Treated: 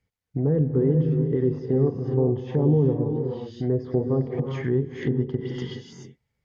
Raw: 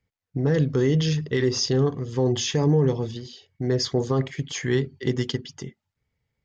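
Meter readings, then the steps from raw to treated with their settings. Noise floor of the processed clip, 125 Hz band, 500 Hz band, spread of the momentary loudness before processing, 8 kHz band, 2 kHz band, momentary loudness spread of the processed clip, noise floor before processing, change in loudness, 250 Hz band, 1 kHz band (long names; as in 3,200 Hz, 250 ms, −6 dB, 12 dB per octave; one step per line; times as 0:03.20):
−79 dBFS, +1.0 dB, +0.5 dB, 13 LU, can't be measured, −9.5 dB, 9 LU, −83 dBFS, 0.0 dB, +1.0 dB, −4.5 dB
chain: reverb whose tail is shaped and stops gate 460 ms rising, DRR 5.5 dB
treble cut that deepens with the level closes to 620 Hz, closed at −20.5 dBFS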